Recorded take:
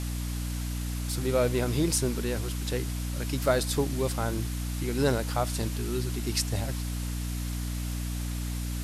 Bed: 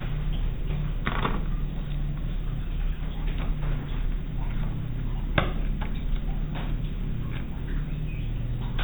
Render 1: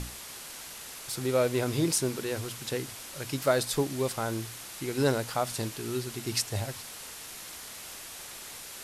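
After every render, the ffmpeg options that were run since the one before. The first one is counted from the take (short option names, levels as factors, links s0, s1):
-af "bandreject=f=60:t=h:w=6,bandreject=f=120:t=h:w=6,bandreject=f=180:t=h:w=6,bandreject=f=240:t=h:w=6,bandreject=f=300:t=h:w=6"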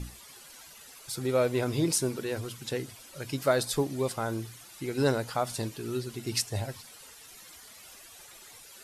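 -af "afftdn=nr=12:nf=-44"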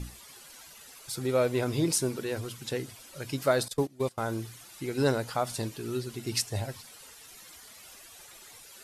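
-filter_complex "[0:a]asettb=1/sr,asplit=3[s0][s1][s2];[s0]atrim=end=3.684[s3];[s1]atrim=start=3.68:end=4.18,asetpts=PTS-STARTPTS,afade=t=in:d=0.004:c=qsin,afade=t=out:st=0.496:d=0.004:c=qsin,agate=range=0.1:threshold=0.0282:ratio=16:release=100:detection=peak[s4];[s2]atrim=start=4.176[s5];[s3][s4]acrossfade=d=0.004:c1=hsin:c2=qsin[s6];[s6][s5]acrossfade=d=0.004:c1=qsin:c2=hsin"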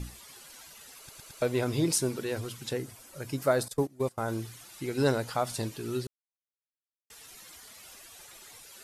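-filter_complex "[0:a]asettb=1/sr,asplit=3[s0][s1][s2];[s0]atrim=end=2.734[s3];[s1]atrim=start=2.73:end=4.28,asetpts=PTS-STARTPTS,afade=t=in:d=0.004:c=qsin,afade=t=out:st=1.546:d=0.004:c=qsin,equalizer=f=3500:w=0.92:g=-6.5[s4];[s2]atrim=start=4.276[s5];[s3][s4]acrossfade=d=0.004:c1=hsin:c2=qsin[s6];[s6][s5]acrossfade=d=0.004:c1=qsin:c2=hsin,asplit=7[s7][s8][s9][s10][s11][s12][s13];[s7]atrim=end=1.092[s14];[s8]atrim=start=0.978:end=1.092[s15];[s9]atrim=start=0.978:end=1.092[s16];[s10]atrim=start=0.978:end=1.092[s17];[s11]atrim=start=1.418:end=6.07,asetpts=PTS-STARTPTS,afade=t=out:st=4.648:d=0.004:c=hsin[s18];[s12]atrim=start=6.07:end=7.1,asetpts=PTS-STARTPTS,volume=0[s19];[s13]atrim=start=7.1,asetpts=PTS-STARTPTS,afade=t=in:d=0.004:c=hsin[s20];[s14][s15]acrossfade=d=0.004:c1=hsin:c2=hsin[s21];[s21][s16]acrossfade=d=0.004:c1=hsin:c2=hsin[s22];[s22][s17]acrossfade=d=0.004:c1=hsin:c2=hsin[s23];[s18][s19][s20]concat=n=3:v=0:a=1[s24];[s23][s24]acrossfade=d=0.004:c1=hsin:c2=hsin"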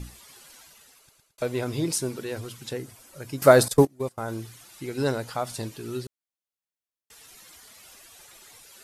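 -filter_complex "[0:a]asplit=4[s0][s1][s2][s3];[s0]atrim=end=1.38,asetpts=PTS-STARTPTS,afade=t=out:st=0.51:d=0.87[s4];[s1]atrim=start=1.38:end=3.422,asetpts=PTS-STARTPTS,afade=t=in:d=0.004:c=hsin[s5];[s2]atrim=start=3.418:end=3.852,asetpts=PTS-STARTPTS,volume=3.55[s6];[s3]atrim=start=3.848[s7];[s4][s5]concat=n=2:v=0:a=1[s8];[s8][s6]acrossfade=d=0.004:c1=hsin:c2=hsin[s9];[s9][s7]acrossfade=d=0.004:c1=hsin:c2=hsin"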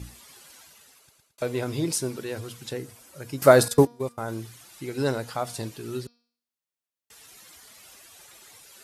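-af "highpass=48,bandreject=f=238:t=h:w=4,bandreject=f=476:t=h:w=4,bandreject=f=714:t=h:w=4,bandreject=f=952:t=h:w=4,bandreject=f=1190:t=h:w=4,bandreject=f=1428:t=h:w=4,bandreject=f=1666:t=h:w=4,bandreject=f=1904:t=h:w=4,bandreject=f=2142:t=h:w=4,bandreject=f=2380:t=h:w=4,bandreject=f=2618:t=h:w=4,bandreject=f=2856:t=h:w=4,bandreject=f=3094:t=h:w=4,bandreject=f=3332:t=h:w=4,bandreject=f=3570:t=h:w=4,bandreject=f=3808:t=h:w=4,bandreject=f=4046:t=h:w=4,bandreject=f=4284:t=h:w=4,bandreject=f=4522:t=h:w=4,bandreject=f=4760:t=h:w=4,bandreject=f=4998:t=h:w=4,bandreject=f=5236:t=h:w=4,bandreject=f=5474:t=h:w=4,bandreject=f=5712:t=h:w=4,bandreject=f=5950:t=h:w=4"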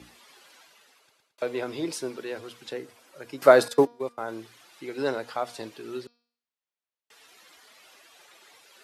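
-filter_complex "[0:a]highpass=57,acrossover=split=260 4700:gain=0.126 1 0.251[s0][s1][s2];[s0][s1][s2]amix=inputs=3:normalize=0"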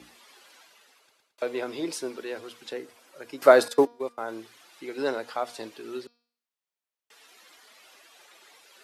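-af "highpass=81,equalizer=f=130:t=o:w=0.79:g=-8.5"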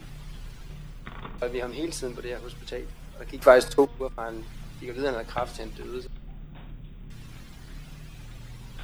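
-filter_complex "[1:a]volume=0.224[s0];[0:a][s0]amix=inputs=2:normalize=0"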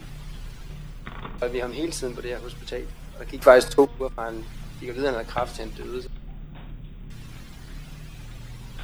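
-af "volume=1.41,alimiter=limit=0.891:level=0:latency=1"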